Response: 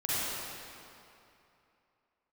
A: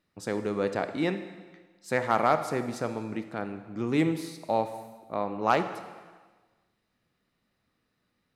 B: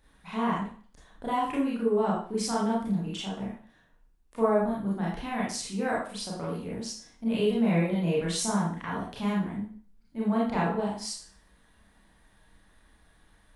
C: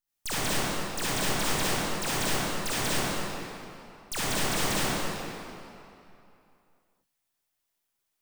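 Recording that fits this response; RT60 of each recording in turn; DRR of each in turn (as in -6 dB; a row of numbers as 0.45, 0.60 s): C; 1.4, 0.45, 2.8 s; 8.5, -6.5, -10.5 dB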